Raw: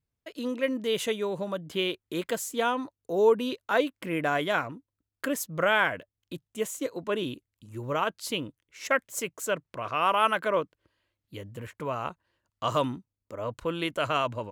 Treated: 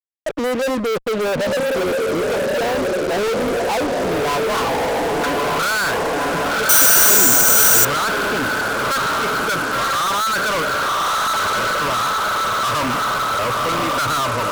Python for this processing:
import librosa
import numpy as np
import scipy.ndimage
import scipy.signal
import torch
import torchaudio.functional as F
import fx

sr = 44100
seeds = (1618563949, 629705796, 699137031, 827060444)

y = fx.spec_gate(x, sr, threshold_db=-20, keep='strong')
y = fx.filter_sweep_lowpass(y, sr, from_hz=580.0, to_hz=1400.0, start_s=2.62, end_s=5.27, q=5.7)
y = fx.echo_diffused(y, sr, ms=1099, feedback_pct=54, wet_db=-4.5)
y = fx.fuzz(y, sr, gain_db=40.0, gate_db=-42.0)
y = fx.resample_bad(y, sr, factor=6, down='none', up='zero_stuff', at=(6.69, 7.85))
y = F.gain(torch.from_numpy(y), -5.0).numpy()